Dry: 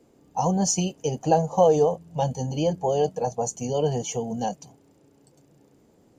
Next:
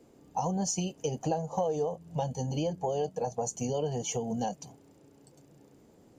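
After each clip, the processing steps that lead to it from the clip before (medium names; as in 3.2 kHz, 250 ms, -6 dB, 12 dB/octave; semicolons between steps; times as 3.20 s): compression 4:1, threshold -29 dBFS, peak gain reduction 13.5 dB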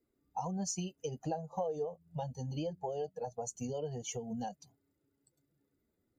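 expander on every frequency bin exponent 1.5; trim -4.5 dB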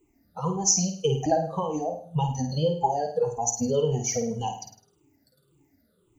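drifting ripple filter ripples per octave 0.68, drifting -1.8 Hz, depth 23 dB; on a send: flutter echo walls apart 8.9 m, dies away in 0.48 s; on the sum: trim +7.5 dB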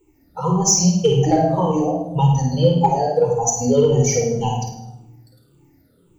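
in parallel at -5 dB: overload inside the chain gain 16.5 dB; on the sum: simulated room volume 3200 m³, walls furnished, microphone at 4.4 m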